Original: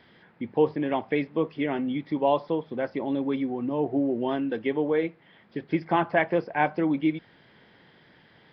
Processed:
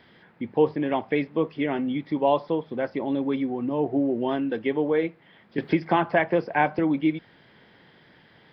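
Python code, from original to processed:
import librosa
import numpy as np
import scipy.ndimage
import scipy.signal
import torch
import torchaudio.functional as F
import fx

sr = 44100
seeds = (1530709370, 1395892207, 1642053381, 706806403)

y = fx.band_squash(x, sr, depth_pct=70, at=(5.58, 6.79))
y = y * 10.0 ** (1.5 / 20.0)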